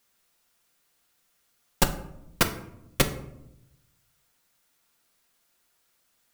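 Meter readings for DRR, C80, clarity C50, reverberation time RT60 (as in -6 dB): 5.0 dB, 15.0 dB, 12.0 dB, 0.85 s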